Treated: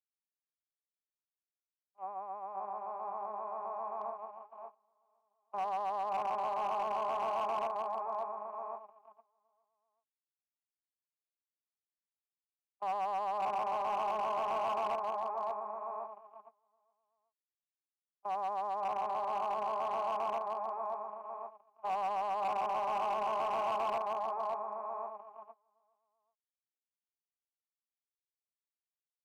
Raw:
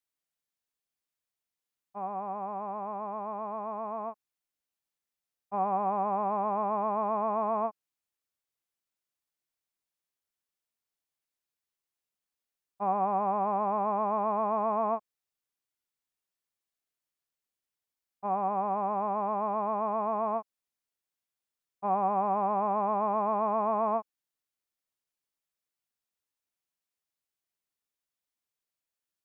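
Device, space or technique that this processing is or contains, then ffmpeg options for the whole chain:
walkie-talkie: -filter_complex "[0:a]asplit=3[a][b][c];[a]afade=t=out:st=3.99:d=0.02[d];[b]asplit=2[e][f];[f]adelay=35,volume=-6dB[g];[e][g]amix=inputs=2:normalize=0,afade=t=in:st=3.99:d=0.02,afade=t=out:st=5.58:d=0.02[h];[c]afade=t=in:st=5.58:d=0.02[i];[d][h][i]amix=inputs=3:normalize=0,highpass=530,lowpass=2.2k,aecho=1:1:570|1083|1545|1960|2334:0.631|0.398|0.251|0.158|0.1,asoftclip=type=hard:threshold=-25dB,agate=range=-28dB:threshold=-37dB:ratio=16:detection=peak,volume=-4.5dB"

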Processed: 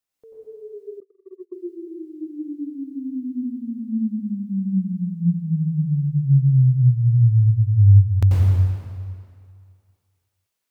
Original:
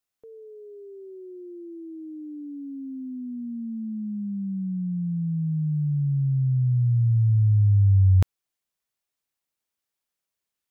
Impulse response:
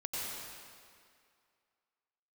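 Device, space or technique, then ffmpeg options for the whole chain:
stairwell: -filter_complex "[1:a]atrim=start_sample=2205[a];[0:a][a]afir=irnorm=-1:irlink=0,asettb=1/sr,asplit=3[b][c][d];[b]atrim=end=1.004[e];[c]atrim=start=1:end=1.56,asetpts=PTS-STARTPTS,afade=t=in:d=0.004:c=qsin,afade=t=out:st=0.556:d=0.004:c=qsin,agate=range=-32dB:threshold=-36dB:ratio=16:detection=peak[f];[d]atrim=start=1.556[g];[e][f]acrossfade=d=0.004:c1=hsin:c2=qsin[h];[h][g]acrossfade=d=0.004:c1=qsin:c2=hsin,volume=3dB"

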